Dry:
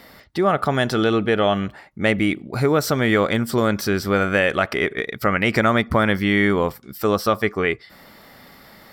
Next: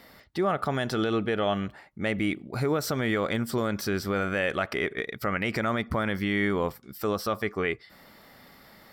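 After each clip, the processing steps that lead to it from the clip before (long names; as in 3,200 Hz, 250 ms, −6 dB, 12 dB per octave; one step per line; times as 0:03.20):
brickwall limiter −8.5 dBFS, peak gain reduction 5.5 dB
level −6.5 dB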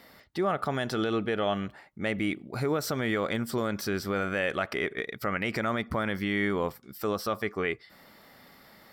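low-shelf EQ 83 Hz −5.5 dB
level −1.5 dB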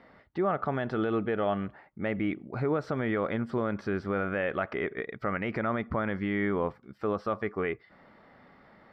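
low-pass filter 1,800 Hz 12 dB per octave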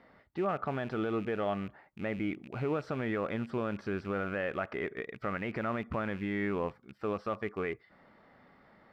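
loose part that buzzes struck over −41 dBFS, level −37 dBFS
level −4 dB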